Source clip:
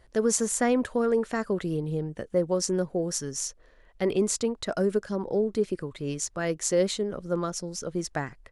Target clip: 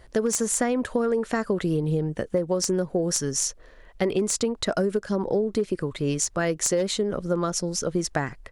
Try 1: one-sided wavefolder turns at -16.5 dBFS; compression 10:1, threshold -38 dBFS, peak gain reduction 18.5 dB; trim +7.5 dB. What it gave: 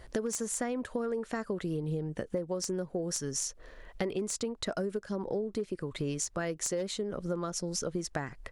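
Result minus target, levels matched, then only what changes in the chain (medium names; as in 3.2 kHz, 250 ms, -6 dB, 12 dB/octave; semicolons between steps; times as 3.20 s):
compression: peak gain reduction +9.5 dB
change: compression 10:1, threshold -27.5 dBFS, peak gain reduction 9.5 dB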